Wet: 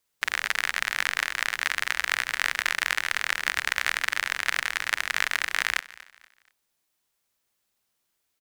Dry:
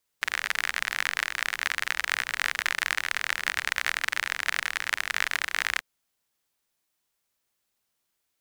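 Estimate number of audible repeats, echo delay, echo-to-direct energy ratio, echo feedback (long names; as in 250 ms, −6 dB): 2, 239 ms, −19.5 dB, 35%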